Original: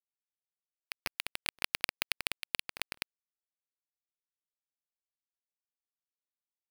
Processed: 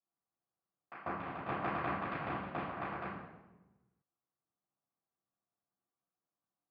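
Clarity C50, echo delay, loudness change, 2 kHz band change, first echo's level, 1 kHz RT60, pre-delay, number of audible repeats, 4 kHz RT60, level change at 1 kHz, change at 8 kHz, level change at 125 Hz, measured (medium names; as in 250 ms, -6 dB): 0.0 dB, no echo, -3.5 dB, -5.5 dB, no echo, 1.0 s, 3 ms, no echo, 0.75 s, +10.5 dB, under -35 dB, +12.0 dB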